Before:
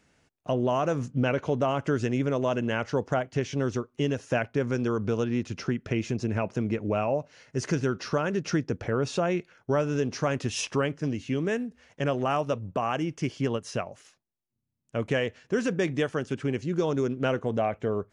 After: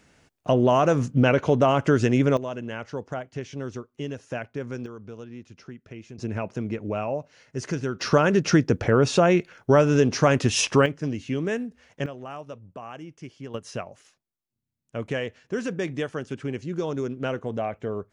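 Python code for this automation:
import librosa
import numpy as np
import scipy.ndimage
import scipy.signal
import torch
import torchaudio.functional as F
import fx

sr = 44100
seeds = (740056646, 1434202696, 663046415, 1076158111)

y = fx.gain(x, sr, db=fx.steps((0.0, 6.5), (2.37, -5.5), (4.86, -13.0), (6.18, -1.5), (8.01, 8.0), (10.86, 1.0), (12.06, -11.0), (13.54, -2.0)))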